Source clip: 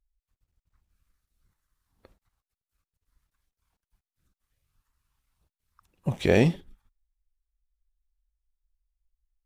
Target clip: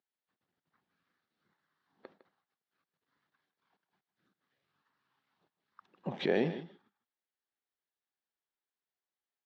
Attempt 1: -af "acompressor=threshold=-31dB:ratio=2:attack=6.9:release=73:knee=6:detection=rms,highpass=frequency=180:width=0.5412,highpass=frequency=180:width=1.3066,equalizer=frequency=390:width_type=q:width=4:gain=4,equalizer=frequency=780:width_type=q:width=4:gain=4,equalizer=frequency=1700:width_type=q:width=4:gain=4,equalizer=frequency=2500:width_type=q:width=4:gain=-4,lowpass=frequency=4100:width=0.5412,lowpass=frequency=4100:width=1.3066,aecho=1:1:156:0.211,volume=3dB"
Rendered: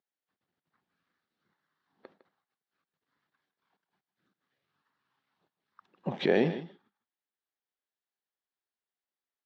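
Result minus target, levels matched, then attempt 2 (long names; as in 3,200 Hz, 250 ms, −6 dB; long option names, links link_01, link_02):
downward compressor: peak gain reduction −4.5 dB
-af "acompressor=threshold=-40dB:ratio=2:attack=6.9:release=73:knee=6:detection=rms,highpass=frequency=180:width=0.5412,highpass=frequency=180:width=1.3066,equalizer=frequency=390:width_type=q:width=4:gain=4,equalizer=frequency=780:width_type=q:width=4:gain=4,equalizer=frequency=1700:width_type=q:width=4:gain=4,equalizer=frequency=2500:width_type=q:width=4:gain=-4,lowpass=frequency=4100:width=0.5412,lowpass=frequency=4100:width=1.3066,aecho=1:1:156:0.211,volume=3dB"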